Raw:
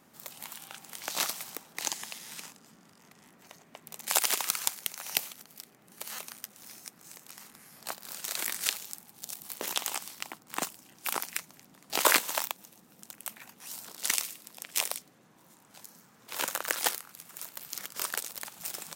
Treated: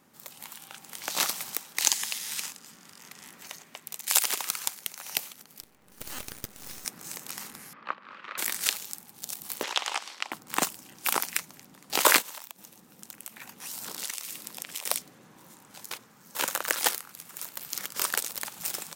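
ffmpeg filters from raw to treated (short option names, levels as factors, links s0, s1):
-filter_complex "[0:a]asettb=1/sr,asplit=3[s0][s1][s2];[s0]atrim=end=1.534[s3];[s1]atrim=start=1.53:end=4.24,asetpts=PTS-STARTPTS,afade=t=in:d=0.004:c=qsin,afade=t=out:st=2.706:d=0.004:c=qsin,tiltshelf=f=1200:g=-5.5[s4];[s2]atrim=start=4.236[s5];[s3][s4]acrossfade=d=0.004:c1=hsin:c2=qsin[s6];[s6][s5]acrossfade=d=0.004:c1=qsin:c2=hsin,asettb=1/sr,asplit=3[s7][s8][s9];[s7]atrim=end=5.604[s10];[s8]atrim=start=5.6:end=6.85,asetpts=PTS-STARTPTS,afade=t=in:d=0.004:c=qsin,afade=t=out:st=1.246:d=0.004:c=qsin,aeval=exprs='max(val(0),0)':c=same[s11];[s9]atrim=start=6.846[s12];[s10][s11]acrossfade=d=0.004:c1=hsin:c2=qsin[s13];[s13][s12]acrossfade=d=0.004:c1=qsin:c2=hsin,asettb=1/sr,asplit=3[s14][s15][s16];[s14]atrim=end=7.734[s17];[s15]atrim=start=7.73:end=8.38,asetpts=PTS-STARTPTS,afade=t=in:d=0.004:c=qsin,afade=t=out:st=0.646:d=0.004:c=qsin,highpass=240,equalizer=f=410:t=q:w=4:g=-4,equalizer=f=730:t=q:w=4:g=-10,equalizer=f=1200:t=q:w=4:g=9,lowpass=f=2600:w=0.5412,lowpass=f=2600:w=1.3066[s18];[s16]atrim=start=8.376[s19];[s17][s18]acrossfade=d=0.004:c1=hsin:c2=qsin[s20];[s20][s19]acrossfade=d=0.004:c1=qsin:c2=hsin,asettb=1/sr,asplit=3[s21][s22][s23];[s21]atrim=end=9.634[s24];[s22]atrim=start=9.63:end=10.32,asetpts=PTS-STARTPTS,afade=t=in:d=0.004:c=qsin,afade=t=out:st=0.686:d=0.004:c=qsin,highpass=510,lowpass=4500[s25];[s23]atrim=start=10.316[s26];[s24][s25]acrossfade=d=0.004:c1=hsin:c2=qsin[s27];[s27][s26]acrossfade=d=0.004:c1=qsin:c2=hsin,asplit=3[s28][s29][s30];[s28]afade=t=out:st=12.21:d=0.02[s31];[s29]acompressor=threshold=0.01:ratio=10:attack=3.2:release=140:knee=1:detection=peak,afade=t=in:st=12.21:d=0.02,afade=t=out:st=14.85:d=0.02[s32];[s30]afade=t=in:st=14.85:d=0.02[s33];[s31][s32][s33]amix=inputs=3:normalize=0,asplit=3[s34][s35][s36];[s34]atrim=end=15.912[s37];[s35]atrim=start=15.908:end=16.352,asetpts=PTS-STARTPTS,areverse[s38];[s36]atrim=start=16.348[s39];[s37][s38]acrossfade=d=0.004:c1=hsin:c2=hsin[s40];[s40][s39]acrossfade=d=0.004:c1=hsin:c2=hsin,bandreject=f=670:w=13,dynaudnorm=f=670:g=3:m=3.76,volume=0.891"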